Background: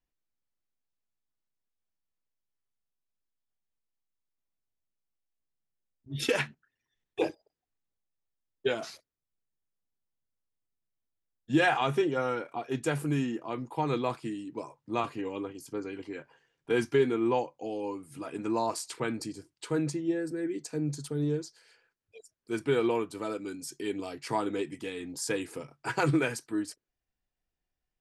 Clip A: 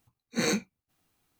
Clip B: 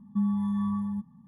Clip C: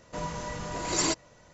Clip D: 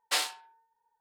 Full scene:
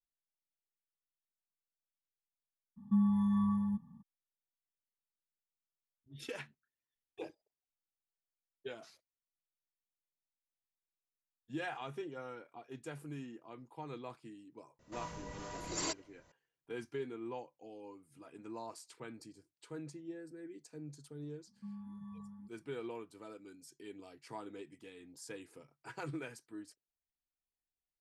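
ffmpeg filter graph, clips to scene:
-filter_complex "[2:a]asplit=2[s0][s1];[0:a]volume=0.158[s2];[3:a]acrossover=split=410[s3][s4];[s3]aeval=exprs='val(0)*(1-0.5/2+0.5/2*cos(2*PI*2.2*n/s))':c=same[s5];[s4]aeval=exprs='val(0)*(1-0.5/2-0.5/2*cos(2*PI*2.2*n/s))':c=same[s6];[s5][s6]amix=inputs=2:normalize=0[s7];[s1]flanger=delay=2.3:depth=8.7:regen=-90:speed=1.9:shape=triangular[s8];[s0]atrim=end=1.27,asetpts=PTS-STARTPTS,volume=0.75,afade=t=in:d=0.02,afade=t=out:st=1.25:d=0.02,adelay=2760[s9];[s7]atrim=end=1.53,asetpts=PTS-STARTPTS,volume=0.376,afade=t=in:d=0.004:c=hsin,afade=t=out:st=1.526:d=0.004:c=hsin,adelay=14790[s10];[s8]atrim=end=1.27,asetpts=PTS-STARTPTS,volume=0.158,afade=t=in:d=0.004:c=hsin,afade=t=out:st=1.266:d=0.004:c=hsin,adelay=21470[s11];[s2][s9][s10][s11]amix=inputs=4:normalize=0"

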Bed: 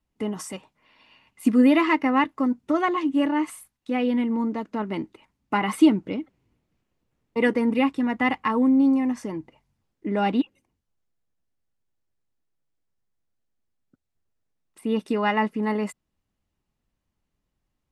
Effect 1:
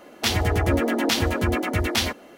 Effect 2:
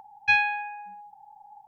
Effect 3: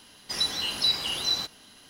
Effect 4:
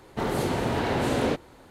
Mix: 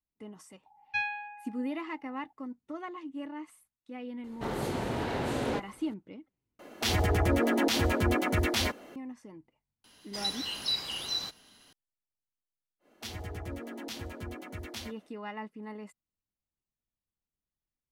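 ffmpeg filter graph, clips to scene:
-filter_complex "[1:a]asplit=2[s0][s1];[0:a]volume=0.133[s2];[s0]alimiter=limit=0.188:level=0:latency=1:release=23[s3];[s1]acrossover=split=350|3000[s4][s5][s6];[s5]acompressor=threshold=0.0562:ratio=6:attack=3.2:release=140:knee=2.83:detection=peak[s7];[s4][s7][s6]amix=inputs=3:normalize=0[s8];[s2]asplit=2[s9][s10];[s9]atrim=end=6.594[s11];[s3]atrim=end=2.37,asetpts=PTS-STARTPTS,volume=0.708[s12];[s10]atrim=start=8.956[s13];[2:a]atrim=end=1.67,asetpts=PTS-STARTPTS,volume=0.299,afade=t=in:d=0.004:c=hsin,afade=t=out:st=1.666:d=0.004:c=hsin,adelay=660[s14];[4:a]atrim=end=1.7,asetpts=PTS-STARTPTS,volume=0.473,afade=t=in:d=0.004:c=hsin,afade=t=out:st=1.696:d=0.004:c=hsin,adelay=4240[s15];[3:a]atrim=end=1.89,asetpts=PTS-STARTPTS,volume=0.473,afade=t=in:d=0.004:c=hsin,afade=t=out:st=1.886:d=0.004:c=hsin,adelay=9840[s16];[s8]atrim=end=2.37,asetpts=PTS-STARTPTS,volume=0.133,afade=t=in:d=0.1,afade=t=out:st=2.27:d=0.1,adelay=12790[s17];[s11][s12]acrossfade=d=0.004:c1=hsin:c2=hsin[s18];[s18][s13]acrossfade=d=0.004:c1=hsin:c2=hsin[s19];[s19][s14][s15][s16][s17]amix=inputs=5:normalize=0"

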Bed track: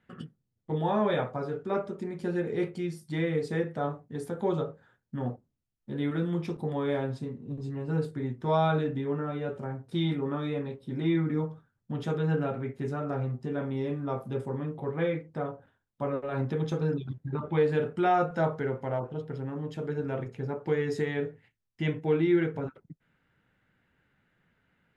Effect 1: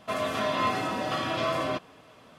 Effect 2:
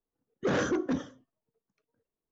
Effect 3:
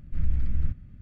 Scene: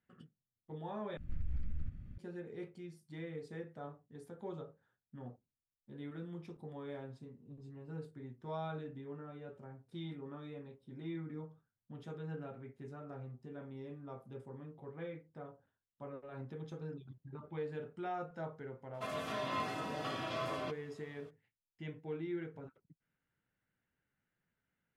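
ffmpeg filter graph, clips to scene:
-filter_complex "[0:a]volume=0.158[s0];[3:a]acompressor=threshold=0.0355:ratio=6:attack=3.2:release=140:knee=1:detection=peak[s1];[s0]asplit=2[s2][s3];[s2]atrim=end=1.174[s4];[s1]atrim=end=1.01,asetpts=PTS-STARTPTS,volume=0.708[s5];[s3]atrim=start=2.176[s6];[1:a]atrim=end=2.38,asetpts=PTS-STARTPTS,volume=0.282,afade=t=in:d=0.02,afade=t=out:st=2.36:d=0.02,adelay=18930[s7];[s4][s5]acrossfade=d=0.004:c1=hsin:c2=hsin[s8];[s8][s6]acrossfade=d=0.004:c1=hsin:c2=hsin[s9];[s9][s7]amix=inputs=2:normalize=0"

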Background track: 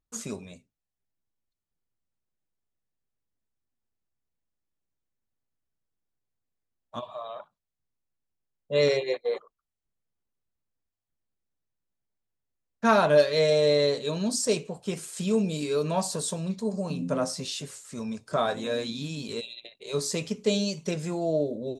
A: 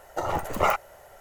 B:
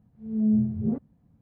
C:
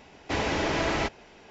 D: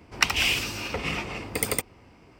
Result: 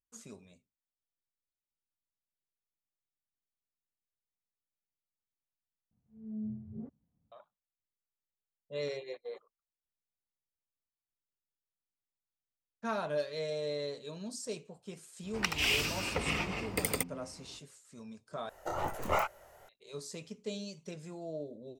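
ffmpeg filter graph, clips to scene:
-filter_complex "[0:a]volume=0.188[s0];[4:a]alimiter=limit=0.299:level=0:latency=1:release=384[s1];[1:a]flanger=delay=19:depth=7.8:speed=2.3[s2];[s0]asplit=3[s3][s4][s5];[s3]atrim=end=5.914[s6];[2:a]atrim=end=1.41,asetpts=PTS-STARTPTS,volume=0.141[s7];[s4]atrim=start=7.316:end=18.494[s8];[s2]atrim=end=1.2,asetpts=PTS-STARTPTS,volume=0.596[s9];[s5]atrim=start=19.686[s10];[s1]atrim=end=2.39,asetpts=PTS-STARTPTS,volume=0.668,afade=t=in:d=0.05,afade=t=out:st=2.34:d=0.05,adelay=15220[s11];[s6][s7]acrossfade=d=0.004:c1=hsin:c2=hsin[s12];[s12][s8]acrossfade=d=0.004:c1=hsin:c2=hsin[s13];[s13][s9]acrossfade=d=0.004:c1=hsin:c2=hsin[s14];[s14][s10]acrossfade=d=0.004:c1=hsin:c2=hsin[s15];[s15][s11]amix=inputs=2:normalize=0"

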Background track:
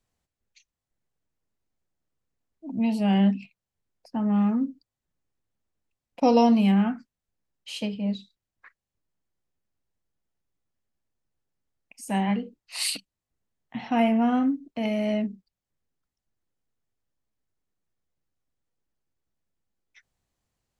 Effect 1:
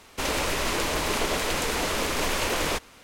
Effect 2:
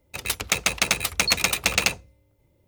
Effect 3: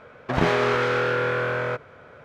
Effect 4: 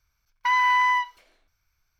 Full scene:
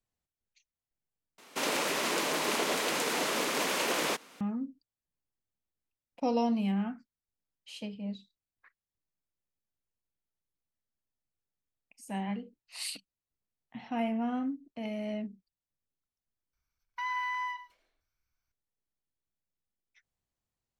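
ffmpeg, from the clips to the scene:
-filter_complex "[0:a]volume=0.316[s0];[1:a]highpass=f=180:w=0.5412,highpass=f=180:w=1.3066[s1];[4:a]asplit=2[s2][s3];[s3]adelay=105,volume=0.2,highshelf=f=4000:g=-2.36[s4];[s2][s4]amix=inputs=2:normalize=0[s5];[s0]asplit=2[s6][s7];[s6]atrim=end=1.384[s8];[s1]atrim=end=3.03,asetpts=PTS-STARTPTS,volume=0.668[s9];[s7]atrim=start=4.406[s10];[s5]atrim=end=1.99,asetpts=PTS-STARTPTS,volume=0.211,afade=t=in:d=0.004:c=hsin,afade=t=out:st=1.986:d=0.004:c=hsin,adelay=16530[s11];[s8][s9]acrossfade=d=0.004:c1=hsin:c2=hsin[s12];[s12][s10]acrossfade=d=0.004:c1=hsin:c2=hsin[s13];[s13][s11]amix=inputs=2:normalize=0"

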